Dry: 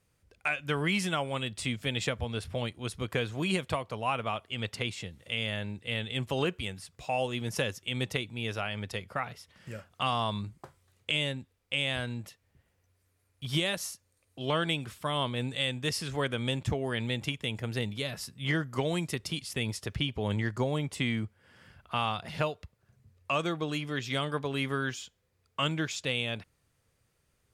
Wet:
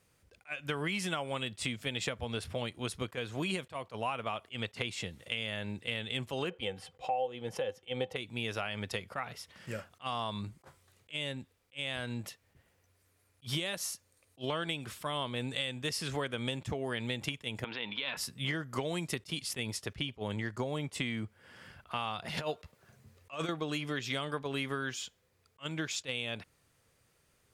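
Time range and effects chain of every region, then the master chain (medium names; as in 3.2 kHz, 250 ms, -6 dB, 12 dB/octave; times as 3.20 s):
6.50–8.16 s: tone controls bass -1 dB, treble -11 dB + small resonant body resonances 510/770/3100 Hz, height 16 dB, ringing for 60 ms
17.64–18.17 s: compressor with a negative ratio -36 dBFS + cabinet simulation 320–3600 Hz, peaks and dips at 390 Hz -6 dB, 630 Hz -6 dB, 960 Hz +9 dB, 1.5 kHz +3 dB, 2.4 kHz +6 dB, 3.4 kHz +7 dB
22.37–23.49 s: bass shelf 98 Hz -11 dB + compressor with a negative ratio -35 dBFS, ratio -0.5 + doubling 13 ms -11 dB
whole clip: bass shelf 140 Hz -7.5 dB; compression, threshold -36 dBFS; attacks held to a fixed rise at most 410 dB/s; trim +4.5 dB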